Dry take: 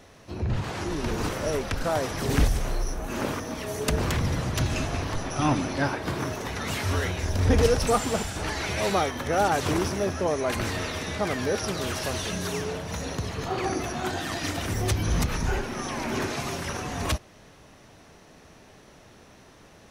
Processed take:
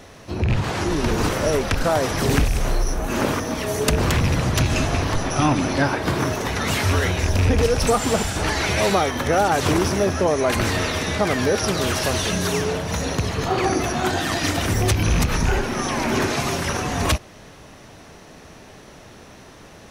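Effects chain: rattling part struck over -22 dBFS, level -23 dBFS; compressor, threshold -22 dBFS, peak gain reduction 7.5 dB; gain +8 dB

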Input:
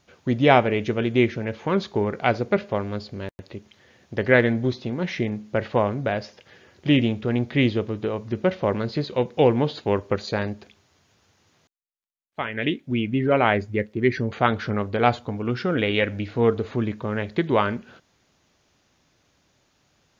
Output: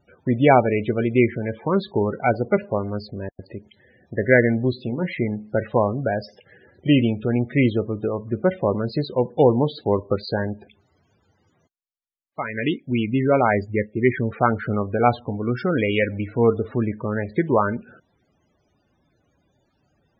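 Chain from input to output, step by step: 4.84–5.27 de-hum 67.58 Hz, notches 38; loudest bins only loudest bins 32; gain +2 dB

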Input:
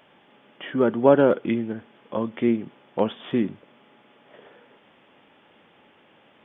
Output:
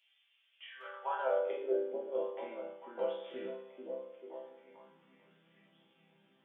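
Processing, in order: high shelf 3200 Hz +9 dB; resonator bank C3 major, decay 0.72 s; high-pass sweep 550 Hz -> 160 Hz, 3.95–4.97; delay with a stepping band-pass 0.441 s, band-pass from 280 Hz, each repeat 0.7 oct, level -2.5 dB; high-pass sweep 2800 Hz -> 170 Hz, 0.56–2.1; thinning echo 0.209 s, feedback 44%, high-pass 770 Hz, level -17 dB

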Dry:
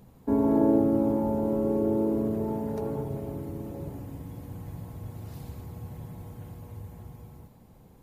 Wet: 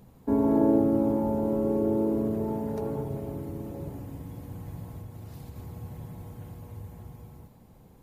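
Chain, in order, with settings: 4.99–5.56 compressor, threshold -38 dBFS, peak gain reduction 4.5 dB

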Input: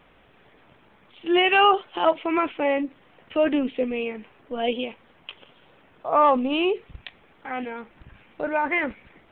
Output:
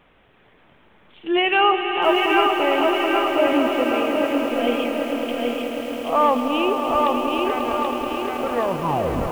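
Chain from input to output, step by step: tape stop at the end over 0.95 s; swelling echo 0.108 s, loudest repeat 5, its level -11 dB; lo-fi delay 0.781 s, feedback 55%, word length 7-bit, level -3 dB

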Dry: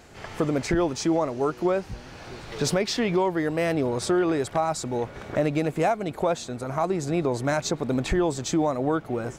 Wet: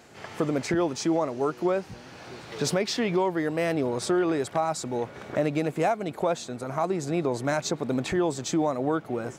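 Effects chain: HPF 120 Hz 12 dB/oct; gain -1.5 dB

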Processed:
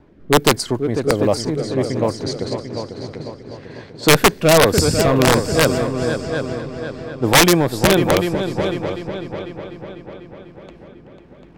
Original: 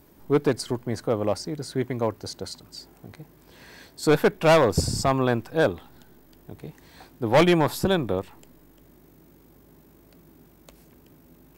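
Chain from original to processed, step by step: rotary speaker horn 1.2 Hz; multi-head echo 0.248 s, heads second and third, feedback 51%, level -8.5 dB; wrapped overs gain 12.5 dB; low-pass opened by the level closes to 2400 Hz, open at -21.5 dBFS; gain +8.5 dB

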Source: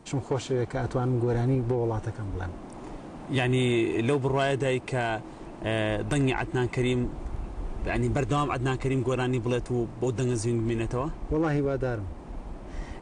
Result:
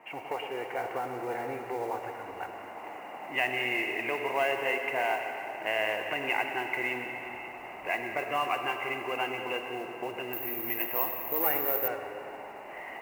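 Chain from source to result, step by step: HPF 510 Hz 6 dB/oct; tilt +3.5 dB/oct; in parallel at -2 dB: compressor, threshold -43 dBFS, peak gain reduction 19.5 dB; on the sum: rippled Chebyshev low-pass 2900 Hz, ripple 9 dB; split-band echo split 1000 Hz, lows 0.111 s, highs 0.183 s, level -12.5 dB; modulation noise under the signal 24 dB; digital reverb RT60 3.3 s, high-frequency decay 0.95×, pre-delay 20 ms, DRR 5 dB; 10.33–11.88 careless resampling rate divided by 3×, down none, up zero stuff; gain +3 dB

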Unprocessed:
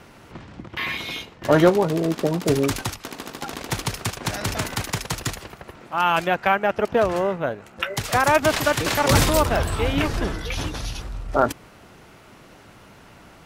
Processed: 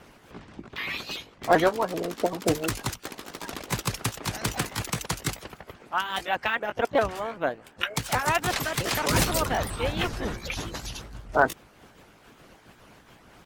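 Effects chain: repeated pitch sweeps +3 st, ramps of 0.388 s; harmonic-percussive split harmonic -13 dB

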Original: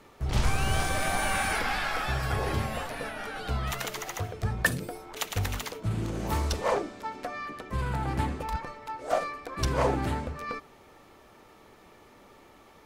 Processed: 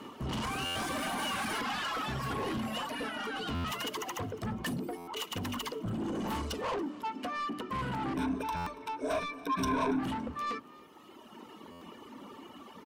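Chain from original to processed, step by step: reverb removal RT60 1.9 s; in parallel at -3 dB: compressor, threshold -41 dBFS, peak gain reduction 20 dB; on the sum: notch 990 Hz, Q 12; small resonant body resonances 240/1000/2900 Hz, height 16 dB, ringing for 25 ms; limiter -16 dBFS, peak gain reduction 9 dB; HPF 61 Hz 12 dB/oct; low shelf 190 Hz -5.5 dB; notches 50/100/150/200/250/300 Hz; soft clip -29.5 dBFS, distortion -9 dB; 8.16–9.99 ripple EQ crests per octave 1.6, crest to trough 14 dB; on a send: frequency-shifting echo 0.282 s, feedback 45%, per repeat +45 Hz, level -21.5 dB; on the sum: stuck buffer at 0.65/3.54/4.97/8.56/11.71, samples 512, times 8; gain -1.5 dB

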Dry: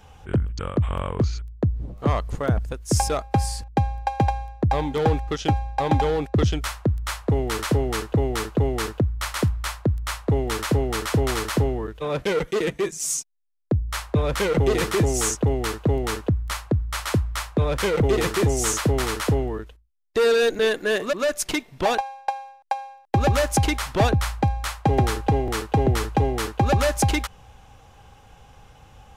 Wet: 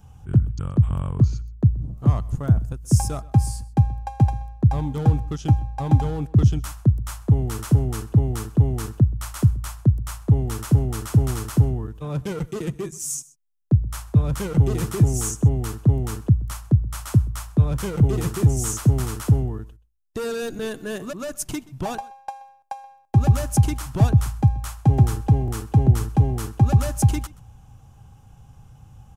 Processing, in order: graphic EQ 125/500/1000/2000/4000 Hz +9/-10/-3/-11/-9 dB; echo 0.128 s -22 dB

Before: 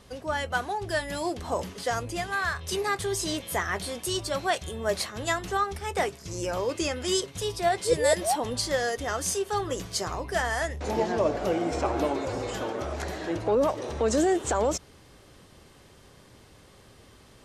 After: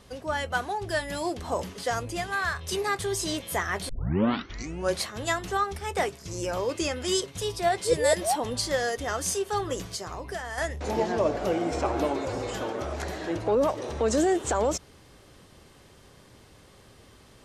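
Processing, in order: 3.89 tape start 1.12 s; 9.85–10.58 compressor 6:1, threshold -32 dBFS, peak gain reduction 10 dB

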